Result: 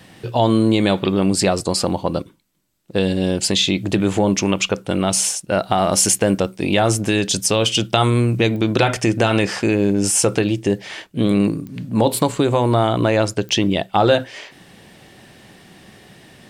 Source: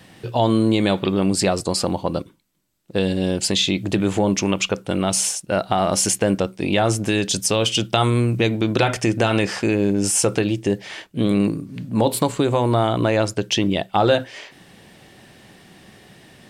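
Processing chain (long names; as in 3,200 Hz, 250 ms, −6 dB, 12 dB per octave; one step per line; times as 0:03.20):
0:05.63–0:07.01: high-shelf EQ 9,600 Hz +6 dB
digital clicks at 0:08.56/0:11.67/0:13.49, −23 dBFS
level +2 dB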